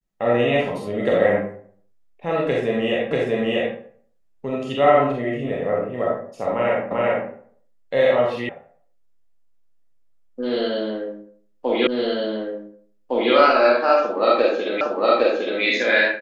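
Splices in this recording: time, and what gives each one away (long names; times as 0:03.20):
0:03.11: the same again, the last 0.64 s
0:06.91: the same again, the last 0.39 s
0:08.49: cut off before it has died away
0:11.87: the same again, the last 1.46 s
0:14.81: the same again, the last 0.81 s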